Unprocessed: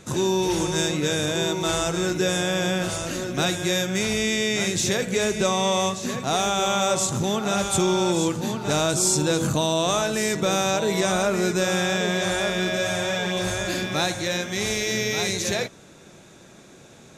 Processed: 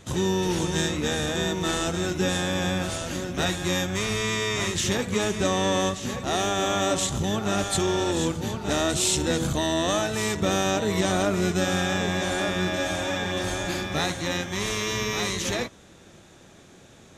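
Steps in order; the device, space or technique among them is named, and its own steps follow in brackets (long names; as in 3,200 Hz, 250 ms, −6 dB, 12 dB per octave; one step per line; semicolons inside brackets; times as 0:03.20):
octave pedal (pitch-shifted copies added −12 semitones −4 dB)
level −3.5 dB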